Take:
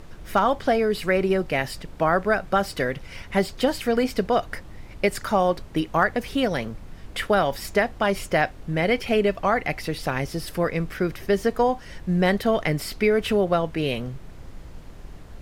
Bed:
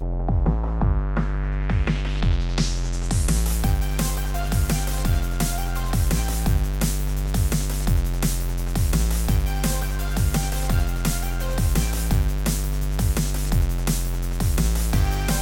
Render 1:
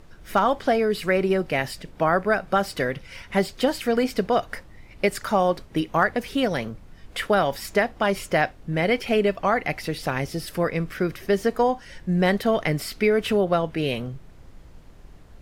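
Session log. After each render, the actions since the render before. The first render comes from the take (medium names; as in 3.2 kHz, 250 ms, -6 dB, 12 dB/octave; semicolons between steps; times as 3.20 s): noise print and reduce 6 dB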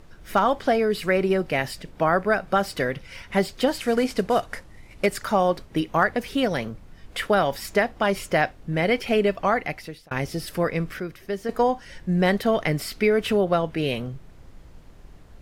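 3.78–5.06 s: CVSD coder 64 kbps; 9.52–10.11 s: fade out; 11.00–11.49 s: gain -7.5 dB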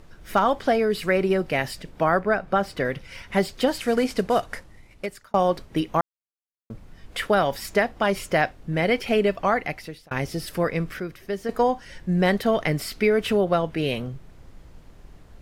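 2.19–2.85 s: treble shelf 3.7 kHz -9.5 dB; 4.55–5.34 s: fade out; 6.01–6.70 s: mute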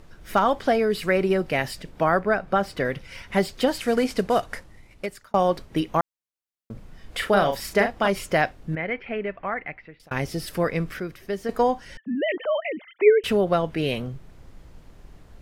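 6.72–8.08 s: doubling 40 ms -6 dB; 8.75–10.00 s: four-pole ladder low-pass 2.5 kHz, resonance 45%; 11.97–13.24 s: formants replaced by sine waves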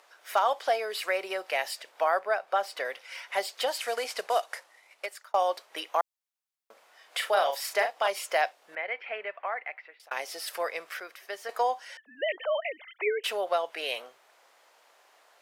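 high-pass 620 Hz 24 dB/octave; dynamic bell 1.5 kHz, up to -6 dB, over -36 dBFS, Q 0.98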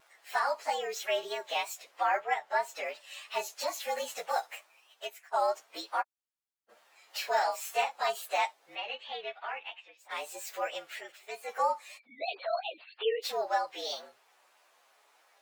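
frequency axis rescaled in octaves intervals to 113%; vibrato 3.1 Hz 54 cents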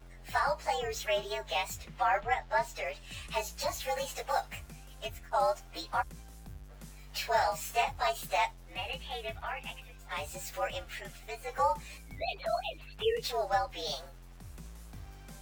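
add bed -27 dB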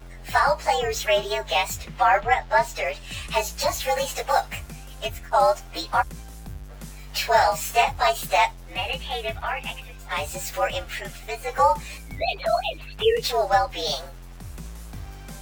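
trim +10 dB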